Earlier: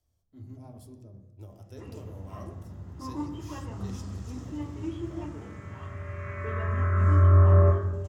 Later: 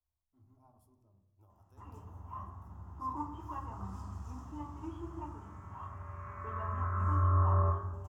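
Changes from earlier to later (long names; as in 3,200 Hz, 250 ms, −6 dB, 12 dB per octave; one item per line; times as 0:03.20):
speech −11.0 dB
second sound −4.5 dB
master: add octave-band graphic EQ 125/250/500/1,000/2,000/4,000/8,000 Hz −10/−6/−12/+11/−11/−12/−7 dB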